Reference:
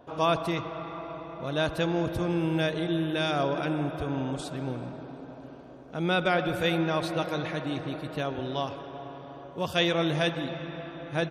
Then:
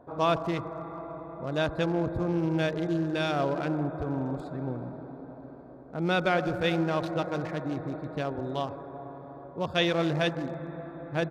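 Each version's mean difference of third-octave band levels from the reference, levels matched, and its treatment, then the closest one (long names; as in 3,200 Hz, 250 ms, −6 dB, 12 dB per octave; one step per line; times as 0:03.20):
3.0 dB: adaptive Wiener filter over 15 samples
high-shelf EQ 7,000 Hz −5 dB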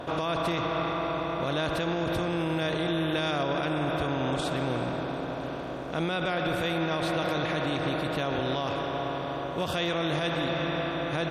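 6.0 dB: compressor on every frequency bin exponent 0.6
brickwall limiter −19.5 dBFS, peak gain reduction 9.5 dB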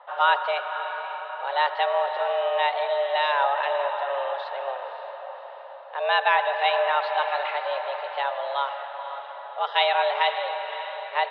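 14.5 dB: on a send: feedback delay with all-pass diffusion 548 ms, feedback 45%, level −12 dB
on the sum: single-sideband voice off tune +280 Hz 260–3,300 Hz
level +5 dB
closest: first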